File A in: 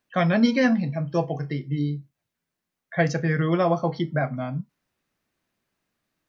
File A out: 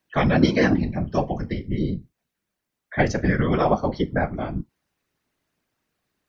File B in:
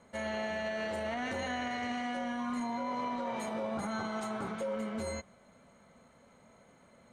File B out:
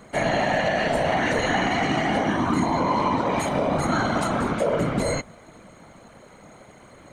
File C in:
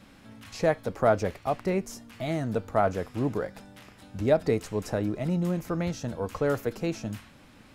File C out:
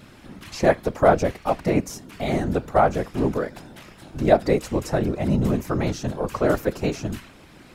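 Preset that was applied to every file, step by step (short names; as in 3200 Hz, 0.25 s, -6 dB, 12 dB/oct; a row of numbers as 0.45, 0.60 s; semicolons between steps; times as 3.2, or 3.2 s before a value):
whisperiser; match loudness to -23 LUFS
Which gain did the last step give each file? +1.5, +13.0, +6.0 dB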